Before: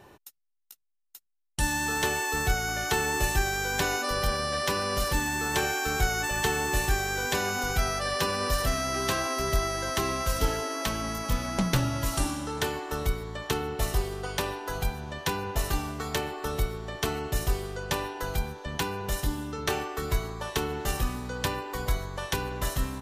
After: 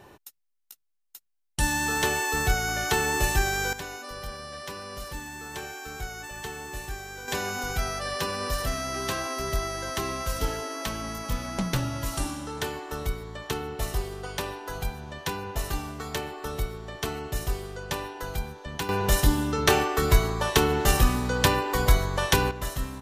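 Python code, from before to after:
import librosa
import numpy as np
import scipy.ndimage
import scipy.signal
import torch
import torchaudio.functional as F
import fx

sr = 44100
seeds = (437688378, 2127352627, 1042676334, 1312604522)

y = fx.gain(x, sr, db=fx.steps((0.0, 2.0), (3.73, -10.0), (7.28, -2.0), (18.89, 8.0), (22.51, -2.0)))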